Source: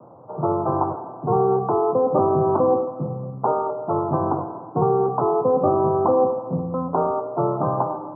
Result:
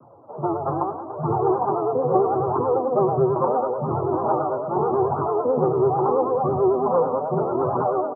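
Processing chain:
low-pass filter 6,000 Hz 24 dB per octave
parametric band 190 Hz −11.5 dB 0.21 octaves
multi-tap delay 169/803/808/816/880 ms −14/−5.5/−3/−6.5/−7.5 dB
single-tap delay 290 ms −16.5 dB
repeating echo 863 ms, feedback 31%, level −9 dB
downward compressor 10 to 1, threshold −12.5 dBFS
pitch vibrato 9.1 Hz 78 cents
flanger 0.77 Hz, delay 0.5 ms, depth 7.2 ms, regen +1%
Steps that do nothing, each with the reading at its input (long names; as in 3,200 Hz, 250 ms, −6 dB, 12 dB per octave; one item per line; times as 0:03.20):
low-pass filter 6,000 Hz: nothing at its input above 1,400 Hz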